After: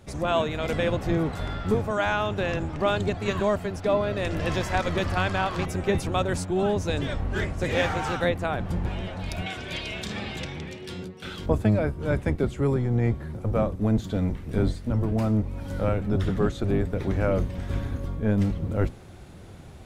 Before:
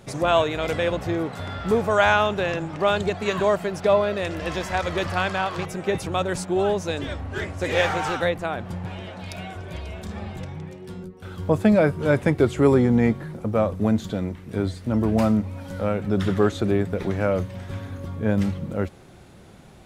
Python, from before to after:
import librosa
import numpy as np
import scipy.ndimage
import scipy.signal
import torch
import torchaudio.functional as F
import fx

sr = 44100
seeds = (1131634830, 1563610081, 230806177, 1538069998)

y = fx.octave_divider(x, sr, octaves=1, level_db=2.0)
y = fx.weighting(y, sr, curve='D', at=(9.46, 11.46))
y = fx.rider(y, sr, range_db=5, speed_s=0.5)
y = y * 10.0 ** (-4.5 / 20.0)